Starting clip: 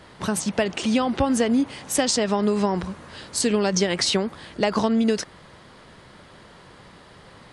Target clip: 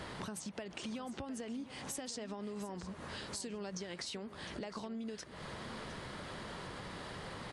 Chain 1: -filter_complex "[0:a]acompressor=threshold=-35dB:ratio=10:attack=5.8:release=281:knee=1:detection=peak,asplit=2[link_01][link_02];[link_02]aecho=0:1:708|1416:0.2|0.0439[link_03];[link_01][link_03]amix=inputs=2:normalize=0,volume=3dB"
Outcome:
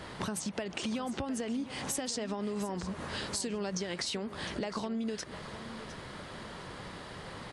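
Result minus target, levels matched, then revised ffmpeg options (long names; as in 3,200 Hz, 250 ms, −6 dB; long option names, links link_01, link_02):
downward compressor: peak gain reduction −7.5 dB
-filter_complex "[0:a]acompressor=threshold=-43.5dB:ratio=10:attack=5.8:release=281:knee=1:detection=peak,asplit=2[link_01][link_02];[link_02]aecho=0:1:708|1416:0.2|0.0439[link_03];[link_01][link_03]amix=inputs=2:normalize=0,volume=3dB"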